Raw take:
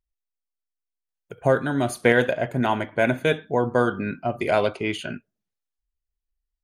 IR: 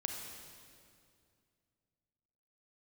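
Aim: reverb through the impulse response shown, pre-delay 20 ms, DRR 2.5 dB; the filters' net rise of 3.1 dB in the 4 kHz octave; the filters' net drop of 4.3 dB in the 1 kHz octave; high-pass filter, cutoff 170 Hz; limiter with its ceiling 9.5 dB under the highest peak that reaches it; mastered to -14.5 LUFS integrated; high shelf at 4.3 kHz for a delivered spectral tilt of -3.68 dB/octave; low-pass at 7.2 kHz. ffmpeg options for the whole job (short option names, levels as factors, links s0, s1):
-filter_complex "[0:a]highpass=170,lowpass=7200,equalizer=f=1000:t=o:g=-6.5,equalizer=f=4000:t=o:g=6.5,highshelf=f=4300:g=-3.5,alimiter=limit=0.178:level=0:latency=1,asplit=2[s0][s1];[1:a]atrim=start_sample=2205,adelay=20[s2];[s1][s2]afir=irnorm=-1:irlink=0,volume=0.668[s3];[s0][s3]amix=inputs=2:normalize=0,volume=3.76"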